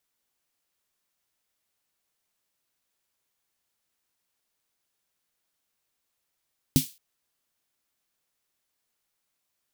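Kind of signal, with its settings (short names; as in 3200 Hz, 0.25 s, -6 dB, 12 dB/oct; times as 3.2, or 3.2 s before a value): snare drum length 0.22 s, tones 150 Hz, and 260 Hz, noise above 2800 Hz, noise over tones -8 dB, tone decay 0.12 s, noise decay 0.31 s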